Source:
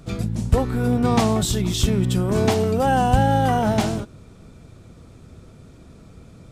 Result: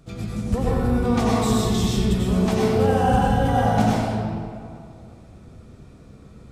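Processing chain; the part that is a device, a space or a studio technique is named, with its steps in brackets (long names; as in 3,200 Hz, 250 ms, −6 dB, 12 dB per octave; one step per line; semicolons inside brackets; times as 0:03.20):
stairwell (convolution reverb RT60 2.2 s, pre-delay 83 ms, DRR −6 dB)
level −7.5 dB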